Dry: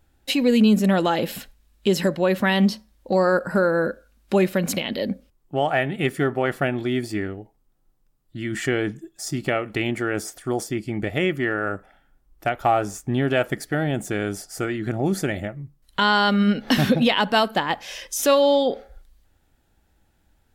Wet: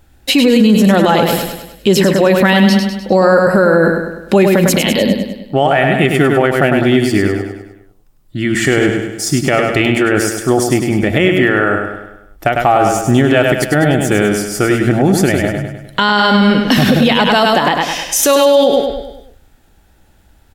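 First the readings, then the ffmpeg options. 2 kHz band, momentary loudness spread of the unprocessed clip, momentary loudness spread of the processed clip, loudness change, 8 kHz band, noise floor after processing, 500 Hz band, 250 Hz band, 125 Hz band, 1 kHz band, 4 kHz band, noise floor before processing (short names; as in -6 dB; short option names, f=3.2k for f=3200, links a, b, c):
+10.5 dB, 12 LU, 9 LU, +10.5 dB, +13.0 dB, -49 dBFS, +10.5 dB, +10.5 dB, +11.0 dB, +10.0 dB, +10.0 dB, -64 dBFS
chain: -af "aecho=1:1:101|202|303|404|505|606:0.501|0.251|0.125|0.0626|0.0313|0.0157,alimiter=level_in=13.5dB:limit=-1dB:release=50:level=0:latency=1,volume=-1dB"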